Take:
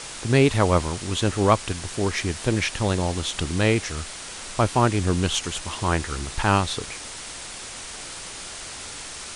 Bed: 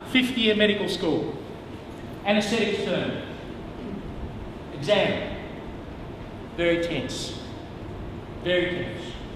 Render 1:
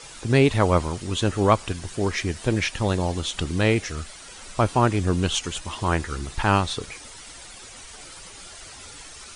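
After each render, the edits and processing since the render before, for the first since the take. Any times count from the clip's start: noise reduction 10 dB, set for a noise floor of -37 dBFS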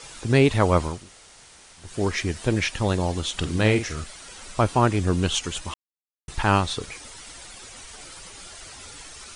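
0.98–1.88 s: room tone, crossfade 0.24 s; 3.37–4.04 s: doubling 47 ms -9 dB; 5.74–6.28 s: mute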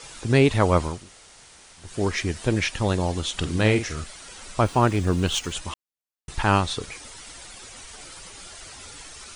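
4.64–5.53 s: median filter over 3 samples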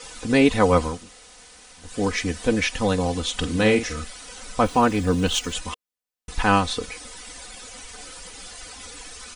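peaking EQ 470 Hz +3.5 dB 0.21 oct; comb 4 ms, depth 74%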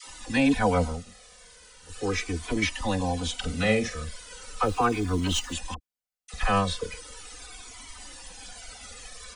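phase dispersion lows, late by 55 ms, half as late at 660 Hz; Shepard-style flanger falling 0.38 Hz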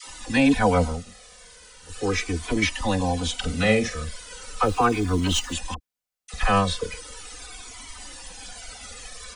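trim +3.5 dB

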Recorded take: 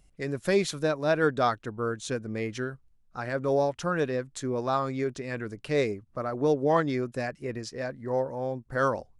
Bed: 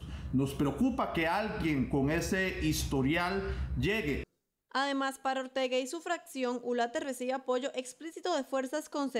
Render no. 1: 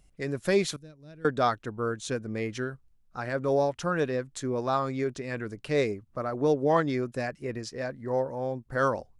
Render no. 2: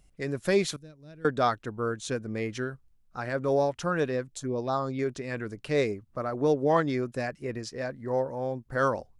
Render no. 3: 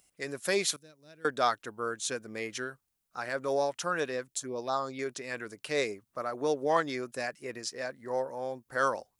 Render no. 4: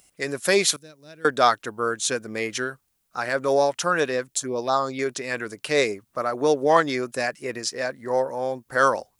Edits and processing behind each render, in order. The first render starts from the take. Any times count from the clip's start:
0.76–1.25 s: amplifier tone stack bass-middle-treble 10-0-1
4.28–4.99 s: touch-sensitive phaser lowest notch 180 Hz, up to 2.4 kHz, full sweep at -24.5 dBFS
high-pass 650 Hz 6 dB/octave; treble shelf 6.8 kHz +11 dB
trim +9 dB

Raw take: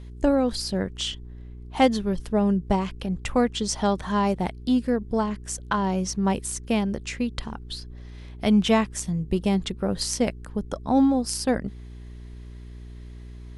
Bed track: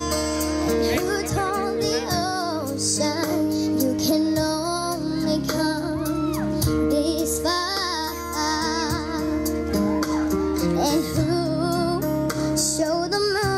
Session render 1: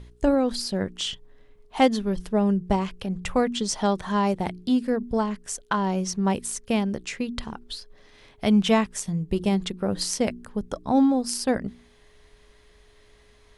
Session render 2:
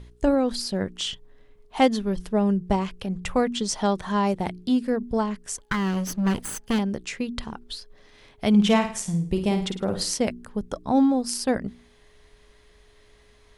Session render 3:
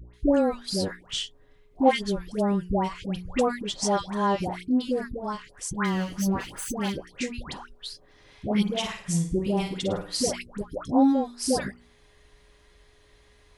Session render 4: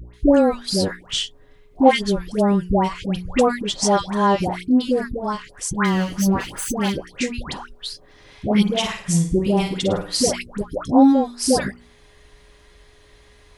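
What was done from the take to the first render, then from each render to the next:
de-hum 60 Hz, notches 6
5.58–6.79 s: comb filter that takes the minimum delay 0.63 ms; 8.49–10.17 s: flutter echo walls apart 9.1 m, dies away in 0.42 s
comb of notches 220 Hz; phase dispersion highs, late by 139 ms, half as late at 1 kHz
trim +7 dB; peak limiter -2 dBFS, peak gain reduction 1.5 dB

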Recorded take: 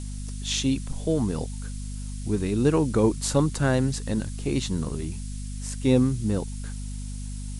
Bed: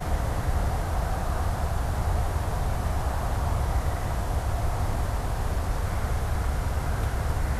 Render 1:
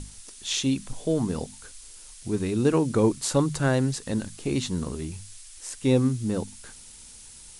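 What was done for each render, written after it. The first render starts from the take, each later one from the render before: hum notches 50/100/150/200/250 Hz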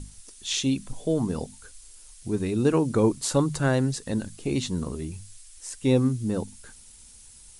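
noise reduction 6 dB, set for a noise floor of -47 dBFS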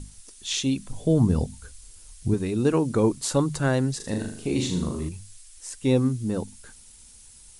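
0.94–2.34 s: peaking EQ 80 Hz +13.5 dB 2.5 oct; 3.96–5.09 s: flutter echo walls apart 6.7 m, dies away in 0.56 s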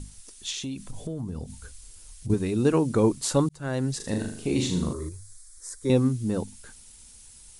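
0.50–2.30 s: compression, threshold -30 dBFS; 3.49–3.97 s: fade in; 4.93–5.90 s: static phaser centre 750 Hz, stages 6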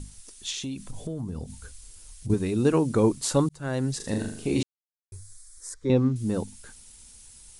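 4.63–5.12 s: mute; 5.74–6.16 s: distance through air 160 m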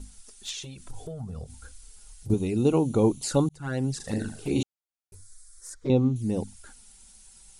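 small resonant body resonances 790/1400 Hz, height 7 dB, ringing for 25 ms; touch-sensitive flanger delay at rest 6.4 ms, full sweep at -22 dBFS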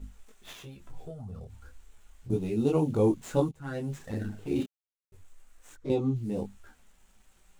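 median filter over 9 samples; detune thickener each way 12 cents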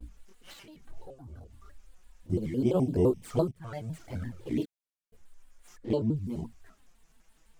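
touch-sensitive flanger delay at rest 5.6 ms, full sweep at -23.5 dBFS; vibrato with a chosen wave square 5.9 Hz, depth 250 cents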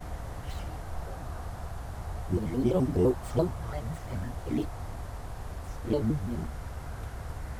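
add bed -11.5 dB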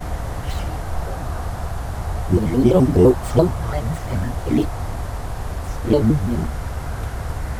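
trim +12 dB; peak limiter -2 dBFS, peak gain reduction 1.5 dB

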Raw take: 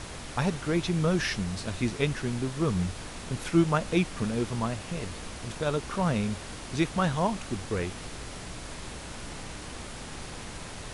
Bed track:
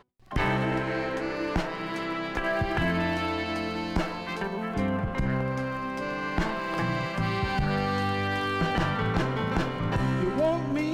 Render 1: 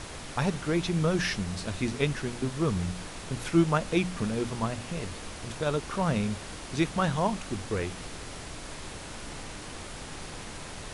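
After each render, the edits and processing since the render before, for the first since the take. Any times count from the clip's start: de-hum 60 Hz, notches 4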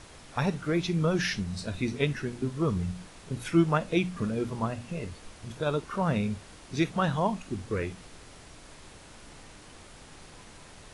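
noise print and reduce 9 dB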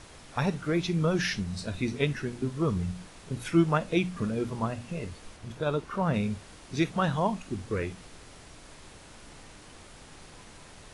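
5.36–6.14 s: treble shelf 4.4 kHz -5.5 dB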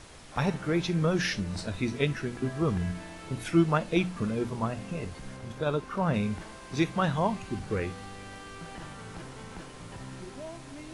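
add bed track -17 dB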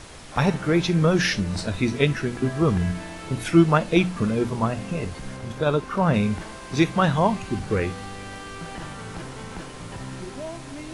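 trim +7 dB

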